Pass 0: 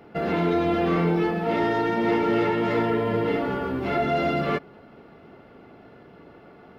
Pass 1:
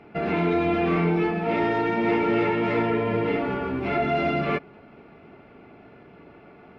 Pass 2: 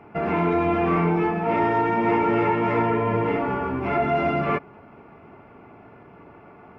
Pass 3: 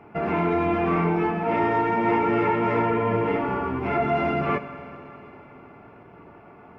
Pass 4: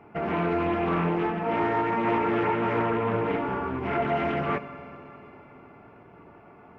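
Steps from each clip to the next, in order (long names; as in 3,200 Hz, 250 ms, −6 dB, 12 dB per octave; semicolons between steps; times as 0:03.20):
low-pass filter 3,100 Hz 6 dB per octave; parametric band 2,400 Hz +10.5 dB 0.26 octaves; notch filter 510 Hz, Q 12
graphic EQ with 15 bands 100 Hz +5 dB, 1,000 Hz +8 dB, 4,000 Hz −10 dB
convolution reverb RT60 3.9 s, pre-delay 33 ms, DRR 11 dB; level −1 dB
highs frequency-modulated by the lows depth 0.28 ms; level −3 dB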